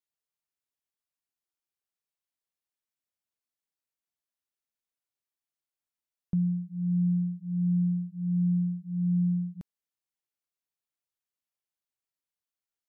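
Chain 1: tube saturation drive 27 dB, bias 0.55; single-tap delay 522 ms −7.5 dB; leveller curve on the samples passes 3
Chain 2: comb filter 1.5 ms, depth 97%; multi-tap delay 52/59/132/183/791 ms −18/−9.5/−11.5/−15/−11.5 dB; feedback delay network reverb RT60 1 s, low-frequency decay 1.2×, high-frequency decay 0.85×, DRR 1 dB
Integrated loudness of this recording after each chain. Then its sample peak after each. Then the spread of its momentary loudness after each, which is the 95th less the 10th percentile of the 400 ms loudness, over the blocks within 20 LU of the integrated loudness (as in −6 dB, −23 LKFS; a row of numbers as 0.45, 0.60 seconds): −29.0, −27.5 LKFS; −24.5, −19.0 dBFS; 6, 11 LU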